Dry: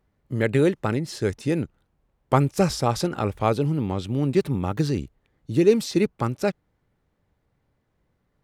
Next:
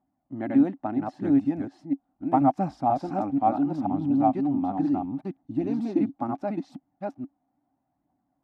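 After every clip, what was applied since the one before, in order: reverse delay 0.483 s, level -1.5 dB; phaser 0.74 Hz, delay 4.4 ms, feedback 32%; double band-pass 450 Hz, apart 1.4 oct; gain +5.5 dB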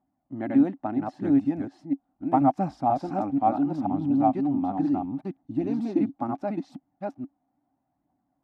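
nothing audible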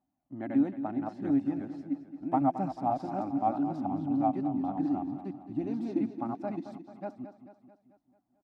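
feedback echo 0.22 s, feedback 54%, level -11.5 dB; gain -6 dB

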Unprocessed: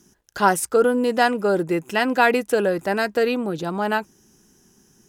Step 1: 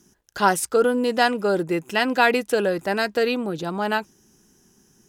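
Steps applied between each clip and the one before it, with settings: dynamic EQ 3900 Hz, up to +5 dB, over -40 dBFS, Q 1; gain -1.5 dB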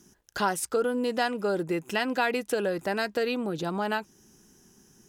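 compressor 2:1, threshold -29 dBFS, peak gain reduction 9.5 dB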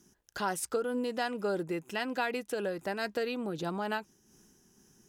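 noise-modulated level, depth 55%; gain -2.5 dB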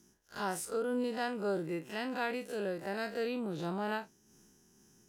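time blur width 81 ms

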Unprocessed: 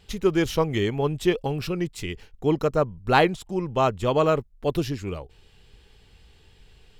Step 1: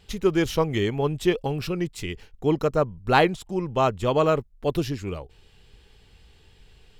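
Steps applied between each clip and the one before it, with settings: nothing audible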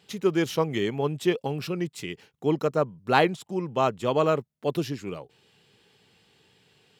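HPF 130 Hz 24 dB/oct; gain -2 dB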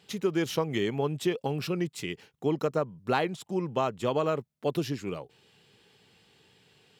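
compressor 5:1, threshold -23 dBFS, peak gain reduction 8.5 dB

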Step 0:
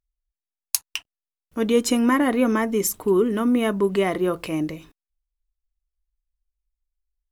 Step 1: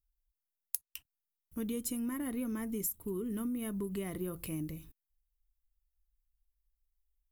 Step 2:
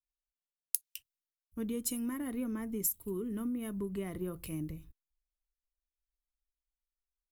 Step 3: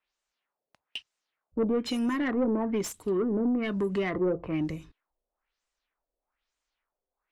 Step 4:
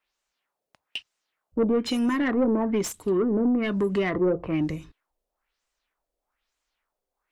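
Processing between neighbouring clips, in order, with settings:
EQ curve 100 Hz 0 dB, 680 Hz -20 dB, 6100 Hz -12 dB, 13000 Hz +6 dB; compressor 10:1, threshold -33 dBFS, peak gain reduction 19 dB
high shelf 9600 Hz -4 dB; three-band expander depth 70%
LFO low-pass sine 1.1 Hz 510–7900 Hz; overdrive pedal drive 22 dB, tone 1500 Hz, clips at -19 dBFS; gain +3 dB
wow and flutter 21 cents; gain +4 dB

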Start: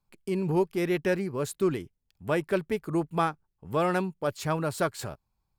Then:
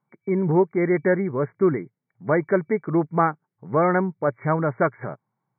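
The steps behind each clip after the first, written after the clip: FFT band-pass 110–2300 Hz; gain +6.5 dB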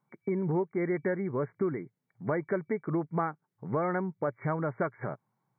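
compressor 3:1, threshold -30 dBFS, peak gain reduction 12.5 dB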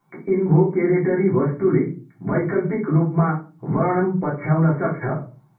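limiter -27.5 dBFS, peak gain reduction 9.5 dB; shoebox room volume 160 m³, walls furnished, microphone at 3.3 m; gain +7 dB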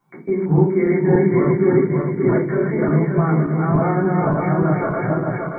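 regenerating reverse delay 0.289 s, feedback 69%, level -1 dB; gain -1 dB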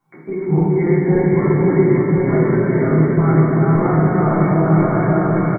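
echo 1.026 s -4.5 dB; shoebox room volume 190 m³, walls hard, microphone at 0.56 m; gain -3 dB

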